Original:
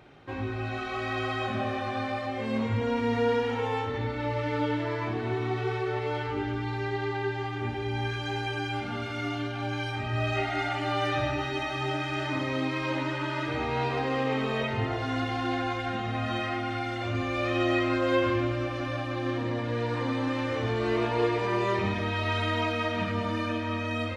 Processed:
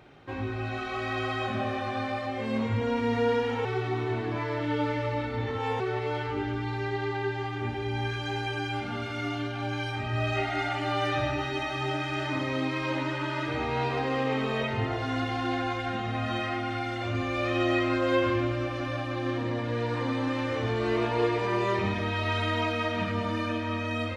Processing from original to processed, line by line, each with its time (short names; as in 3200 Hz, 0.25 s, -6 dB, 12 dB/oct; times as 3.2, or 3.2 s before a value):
3.65–5.8 reverse